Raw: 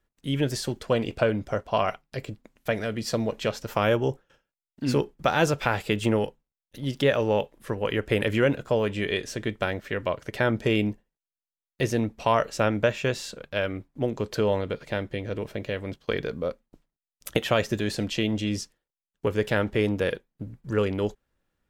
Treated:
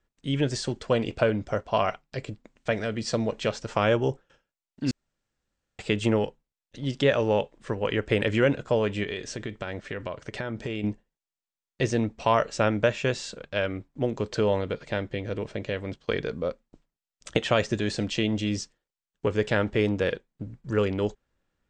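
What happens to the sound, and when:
4.91–5.79 room tone
9.03–10.84 compressor, threshold -28 dBFS
whole clip: steep low-pass 8500 Hz 72 dB/oct

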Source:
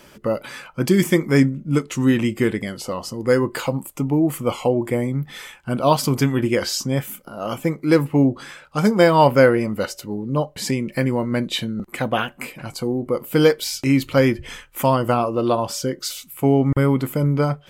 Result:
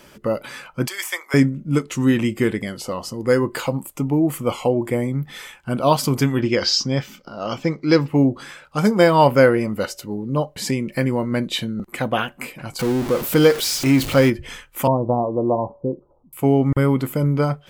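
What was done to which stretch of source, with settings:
0.87–1.34 HPF 770 Hz 24 dB/oct
6.4–8.08 resonant high shelf 7400 Hz -14 dB, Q 3
12.79–14.3 zero-crossing step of -23 dBFS
14.87–16.33 steep low-pass 1000 Hz 72 dB/oct

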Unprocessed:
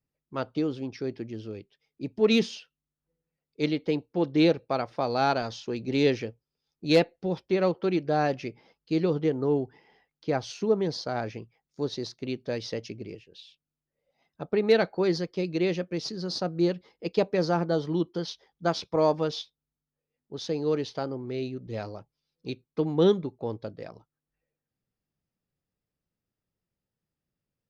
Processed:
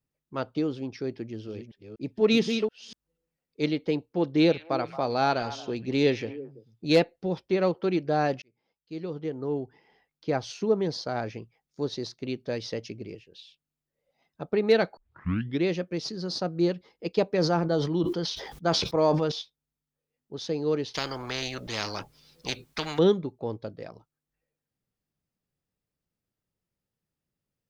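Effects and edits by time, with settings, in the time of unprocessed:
1.23–3.64 reverse delay 0.243 s, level -6 dB
4.37–6.97 delay with a stepping band-pass 0.111 s, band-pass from 2500 Hz, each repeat -1.4 oct, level -9 dB
8.42–10.3 fade in
14.97 tape start 0.68 s
17.3–19.32 sustainer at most 48 dB/s
20.94–22.99 spectral compressor 4:1

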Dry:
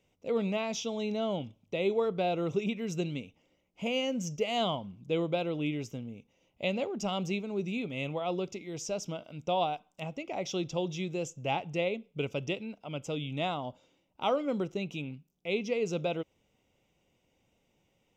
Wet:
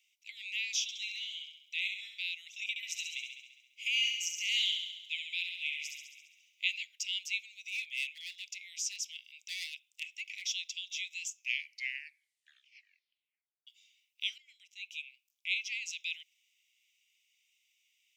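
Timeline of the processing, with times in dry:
0.82–2.19 flutter echo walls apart 11.4 m, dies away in 0.73 s
2.69–6.71 thin delay 68 ms, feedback 64%, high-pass 1600 Hz, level -5 dB
7.68–10.48 hard clip -28.5 dBFS
11.32 tape stop 2.35 s
14.38–15.47 fade in, from -16 dB
whole clip: steep high-pass 2100 Hz 72 dB/oct; gain +5.5 dB

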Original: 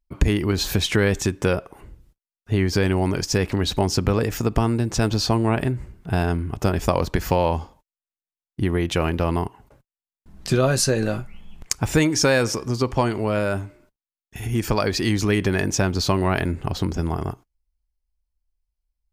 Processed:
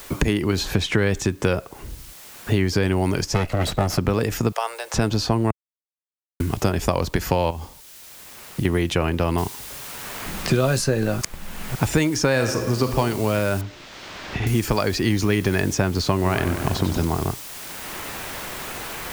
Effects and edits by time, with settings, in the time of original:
0.65–2.68 high shelf 12000 Hz -10 dB
3.34–3.98 minimum comb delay 1.5 ms
4.52–4.94 steep high-pass 510 Hz 48 dB/oct
5.51–6.4 mute
7.5–8.65 compressor, threshold -29 dBFS
9.38 noise floor step -57 dB -43 dB
11.21–11.75 reverse
12.3–12.98 reverb throw, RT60 1.1 s, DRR 5.5 dB
13.61–14.47 air absorption 200 m
15.03–15.6 notch 7800 Hz, Q 10
16.15–17.05 warbling echo 94 ms, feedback 70%, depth 112 cents, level -9.5 dB
whole clip: three-band squash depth 70%

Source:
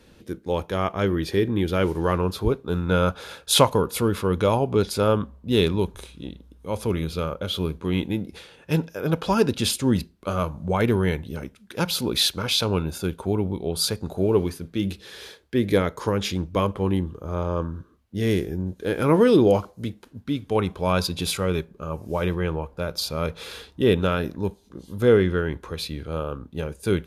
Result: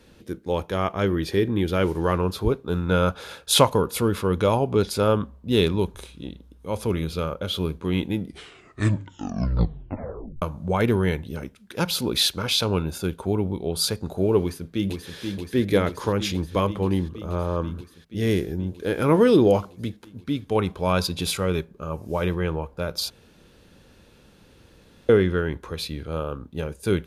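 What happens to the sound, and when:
8.13 tape stop 2.29 s
14.41–15.16 echo throw 0.48 s, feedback 80%, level -5.5 dB
23.1–25.09 room tone

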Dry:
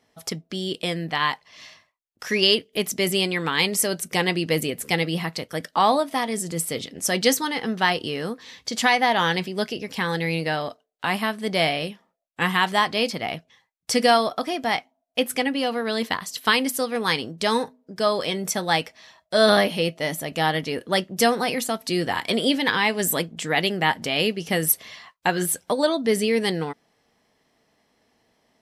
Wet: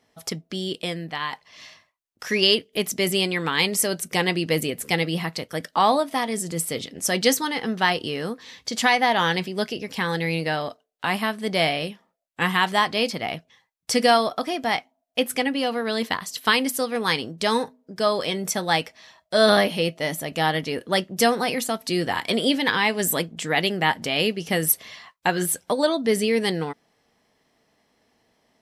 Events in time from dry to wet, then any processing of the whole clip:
0.6–1.32 fade out, to -7.5 dB

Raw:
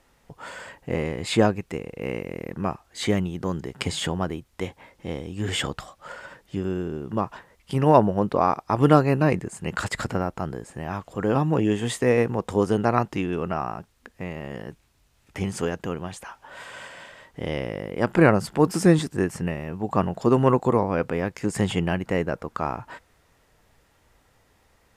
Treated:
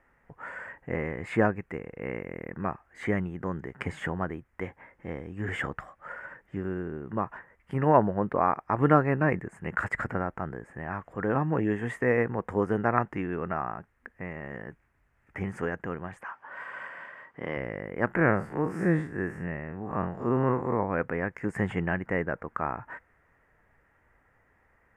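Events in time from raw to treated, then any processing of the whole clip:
16.21–17.57 speaker cabinet 150–9500 Hz, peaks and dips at 1100 Hz +7 dB, 3100 Hz +4 dB, 4600 Hz +5 dB, 7100 Hz -5 dB
18.16–20.8 time blur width 0.1 s
whole clip: resonant high shelf 2700 Hz -13.5 dB, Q 3; gain -5.5 dB

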